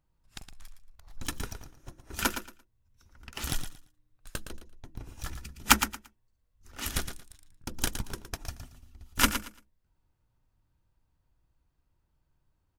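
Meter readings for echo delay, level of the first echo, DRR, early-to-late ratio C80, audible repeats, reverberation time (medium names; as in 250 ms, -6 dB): 114 ms, -9.5 dB, no reverb, no reverb, 2, no reverb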